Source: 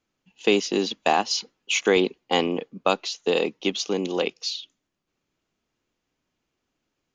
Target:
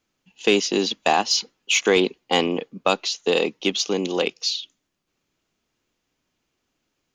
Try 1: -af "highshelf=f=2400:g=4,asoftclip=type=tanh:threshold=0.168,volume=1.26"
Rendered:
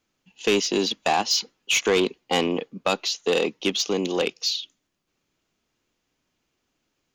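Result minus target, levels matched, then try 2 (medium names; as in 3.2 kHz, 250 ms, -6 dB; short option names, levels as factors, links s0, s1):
saturation: distortion +11 dB
-af "highshelf=f=2400:g=4,asoftclip=type=tanh:threshold=0.447,volume=1.26"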